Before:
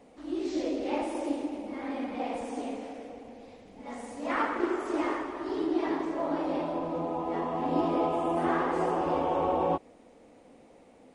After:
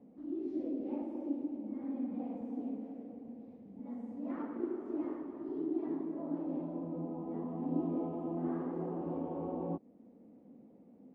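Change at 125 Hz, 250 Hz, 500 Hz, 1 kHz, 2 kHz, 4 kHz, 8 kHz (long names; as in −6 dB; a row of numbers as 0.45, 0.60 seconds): −2.5 dB, −4.0 dB, −11.0 dB, −18.0 dB, below −20 dB, below −25 dB, can't be measured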